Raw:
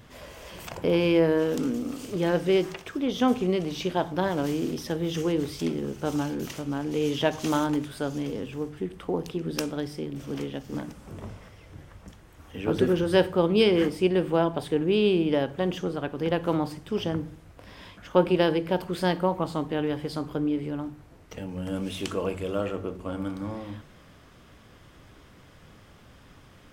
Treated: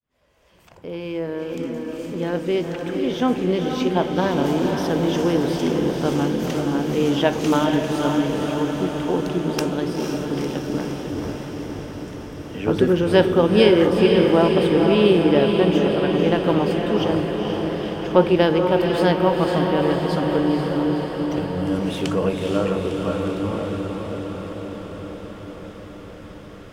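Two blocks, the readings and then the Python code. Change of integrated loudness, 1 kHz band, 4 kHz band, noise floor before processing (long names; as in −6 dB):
+6.5 dB, +7.5 dB, +6.0 dB, −53 dBFS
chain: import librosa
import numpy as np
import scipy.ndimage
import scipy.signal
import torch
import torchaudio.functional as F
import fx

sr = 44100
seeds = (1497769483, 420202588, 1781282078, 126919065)

y = fx.fade_in_head(x, sr, length_s=4.62)
y = fx.high_shelf(y, sr, hz=4900.0, db=-5.0)
y = fx.echo_diffused(y, sr, ms=491, feedback_pct=72, wet_db=-4)
y = y * librosa.db_to_amplitude(5.5)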